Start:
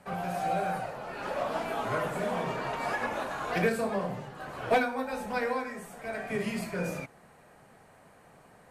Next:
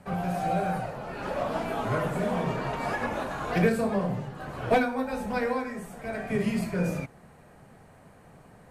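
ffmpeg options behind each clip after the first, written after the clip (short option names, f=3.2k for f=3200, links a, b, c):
-af "lowshelf=f=280:g=10.5"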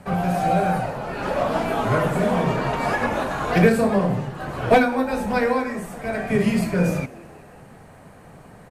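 -filter_complex "[0:a]asplit=5[a][b][c][d][e];[b]adelay=183,afreqshift=81,volume=-23dB[f];[c]adelay=366,afreqshift=162,volume=-27.6dB[g];[d]adelay=549,afreqshift=243,volume=-32.2dB[h];[e]adelay=732,afreqshift=324,volume=-36.7dB[i];[a][f][g][h][i]amix=inputs=5:normalize=0,volume=7.5dB"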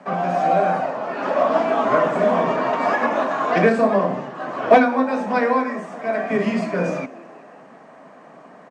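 -af "highpass=f=200:w=0.5412,highpass=f=200:w=1.3066,equalizer=f=270:t=q:w=4:g=5,equalizer=f=640:t=q:w=4:g=8,equalizer=f=1.1k:t=q:w=4:g=8,equalizer=f=1.8k:t=q:w=4:g=3,equalizer=f=4.2k:t=q:w=4:g=-4,lowpass=f=6.5k:w=0.5412,lowpass=f=6.5k:w=1.3066,volume=-1dB"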